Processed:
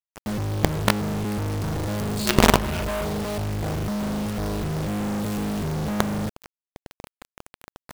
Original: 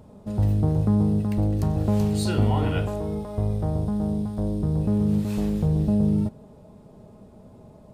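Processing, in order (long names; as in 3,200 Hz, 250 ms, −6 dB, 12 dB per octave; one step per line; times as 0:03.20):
0:02.19–0:03.05: EQ curve with evenly spaced ripples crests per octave 1.4, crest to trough 17 dB
log-companded quantiser 2 bits
level −1 dB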